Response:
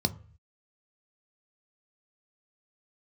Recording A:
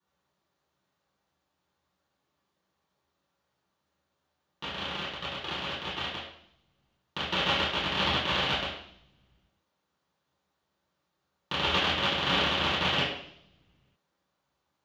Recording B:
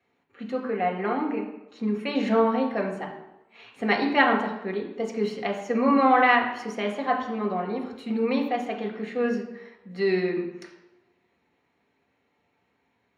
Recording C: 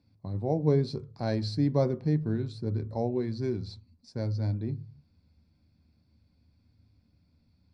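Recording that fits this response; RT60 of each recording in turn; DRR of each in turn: C; 0.65 s, 0.95 s, 0.45 s; -12.0 dB, -0.5 dB, 9.5 dB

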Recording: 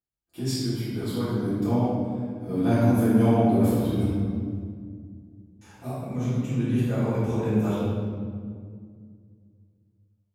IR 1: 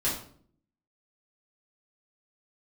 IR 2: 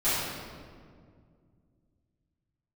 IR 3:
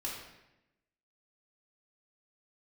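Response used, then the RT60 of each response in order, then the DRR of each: 2; 0.55 s, 2.1 s, 0.90 s; -8.5 dB, -16.0 dB, -4.5 dB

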